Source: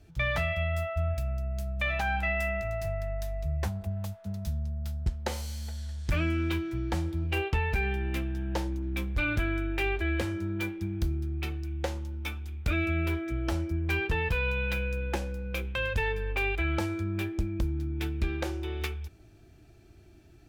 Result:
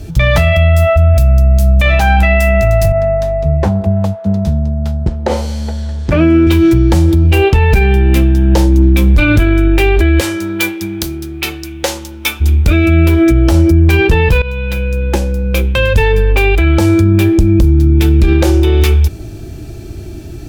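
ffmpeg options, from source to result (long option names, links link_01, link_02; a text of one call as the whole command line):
ffmpeg -i in.wav -filter_complex "[0:a]asettb=1/sr,asplit=3[link_01][link_02][link_03];[link_01]atrim=end=2.924[link_04];[link_02]atrim=start=2.92:end=6.47,asetpts=PTS-STARTPTS,afade=type=in:duration=0.004:curve=qsin,afade=type=out:start_time=3.546:duration=0.004:curve=qsin,bandpass=frequency=550:width_type=q:width=0.52[link_05];[link_03]atrim=start=6.466[link_06];[link_04][link_05]acrossfade=duration=0.004:curve1=hsin:curve2=qsin[link_07];[link_07][link_06]acrossfade=duration=0.004:curve1=qsin:curve2=hsin,asplit=3[link_08][link_09][link_10];[link_08]afade=type=out:start_time=10.19:duration=0.02[link_11];[link_09]highpass=frequency=1300:poles=1,afade=type=in:start_time=10.19:duration=0.02,afade=type=out:start_time=12.4:duration=0.02[link_12];[link_10]afade=type=in:start_time=12.4:duration=0.02[link_13];[link_11][link_12][link_13]amix=inputs=3:normalize=0,asplit=2[link_14][link_15];[link_14]atrim=end=14.42,asetpts=PTS-STARTPTS,afade=type=out:start_time=14.416:duration=0.004:curve=hsin:silence=0.112202[link_16];[link_15]atrim=start=14.42,asetpts=PTS-STARTPTS,afade=type=in:duration=3.27:silence=0.112202[link_17];[link_16][link_17]concat=n=2:v=0:a=1,equalizer=frequency=1700:width_type=o:width=2.3:gain=-8,bandreject=frequency=720:width=18,alimiter=level_in=30dB:limit=-1dB:release=50:level=0:latency=1,volume=-1dB" out.wav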